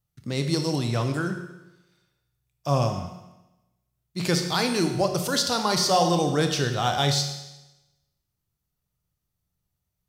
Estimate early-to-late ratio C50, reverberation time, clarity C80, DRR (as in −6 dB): 7.0 dB, 1.0 s, 9.0 dB, 5.0 dB